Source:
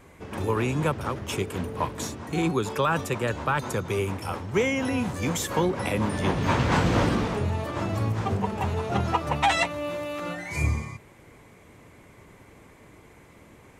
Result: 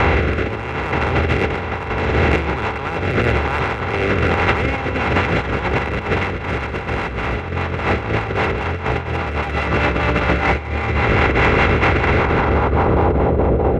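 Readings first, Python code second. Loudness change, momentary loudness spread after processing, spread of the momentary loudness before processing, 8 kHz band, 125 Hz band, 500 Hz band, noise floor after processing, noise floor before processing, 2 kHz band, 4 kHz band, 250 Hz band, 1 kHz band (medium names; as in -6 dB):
+8.5 dB, 7 LU, 9 LU, no reading, +9.0 dB, +9.5 dB, -26 dBFS, -52 dBFS, +12.5 dB, +6.0 dB, +7.0 dB, +9.0 dB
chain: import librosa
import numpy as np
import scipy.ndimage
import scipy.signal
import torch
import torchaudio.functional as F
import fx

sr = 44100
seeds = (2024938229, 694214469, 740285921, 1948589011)

p1 = fx.bin_compress(x, sr, power=0.2)
p2 = scipy.ndimage.gaussian_filter1d(p1, 1.5, mode='constant')
p3 = p2 + fx.echo_single(p2, sr, ms=129, db=-8.5, dry=0)
p4 = fx.filter_sweep_lowpass(p3, sr, from_hz=2000.0, to_hz=630.0, start_s=12.07, end_s=13.38, q=1.2)
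p5 = fx.peak_eq(p4, sr, hz=64.0, db=12.0, octaves=1.0)
p6 = fx.hum_notches(p5, sr, base_hz=50, count=7)
p7 = 10.0 ** (-17.0 / 20.0) * np.tanh(p6 / 10.0 ** (-17.0 / 20.0))
p8 = p6 + (p7 * librosa.db_to_amplitude(-6.0))
p9 = fx.rotary_switch(p8, sr, hz=1.0, then_hz=5.0, switch_at_s=4.11)
p10 = fx.over_compress(p9, sr, threshold_db=-17.0, ratio=-0.5)
p11 = fx.high_shelf(p10, sr, hz=2600.0, db=11.5)
y = p11 * librosa.db_to_amplitude(-1.0)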